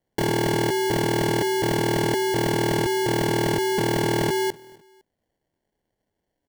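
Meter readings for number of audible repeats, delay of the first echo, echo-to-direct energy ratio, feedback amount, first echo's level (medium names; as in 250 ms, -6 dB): 2, 254 ms, -23.0 dB, 38%, -23.5 dB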